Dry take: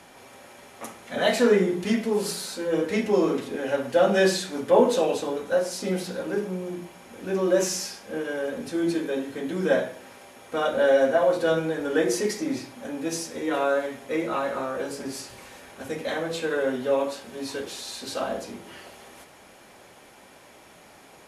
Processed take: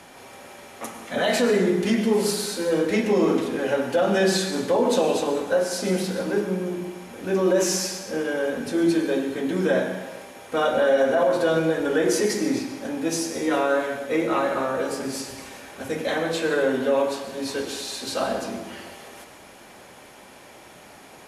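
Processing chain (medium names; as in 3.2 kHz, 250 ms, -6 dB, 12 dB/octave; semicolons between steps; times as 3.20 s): peak limiter -16 dBFS, peak gain reduction 11 dB; plate-style reverb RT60 1.1 s, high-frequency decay 0.85×, pre-delay 85 ms, DRR 7.5 dB; trim +3.5 dB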